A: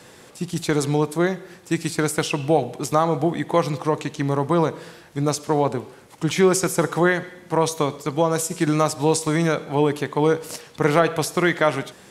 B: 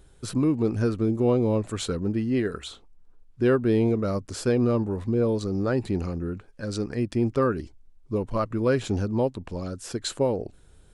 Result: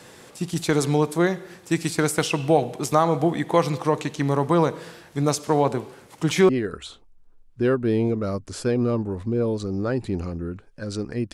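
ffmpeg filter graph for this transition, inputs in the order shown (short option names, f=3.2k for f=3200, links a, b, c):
-filter_complex "[0:a]apad=whole_dur=11.33,atrim=end=11.33,atrim=end=6.492[a];[1:a]atrim=start=2.298:end=7.14[b];[a][b]acrossfade=d=0.004:c1=hsin:c2=hsin"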